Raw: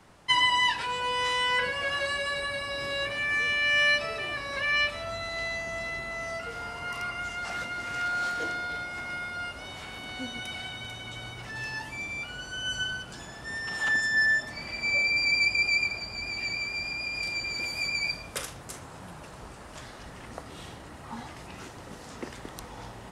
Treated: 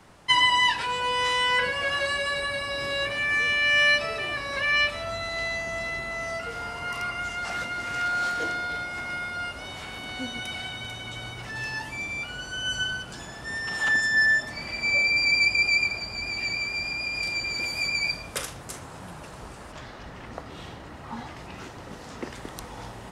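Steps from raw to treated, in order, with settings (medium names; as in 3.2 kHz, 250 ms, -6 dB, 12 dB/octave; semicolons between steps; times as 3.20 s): 19.71–22.34 s: peaking EQ 9.9 kHz -14 dB -> -4.5 dB 1.1 oct; trim +3 dB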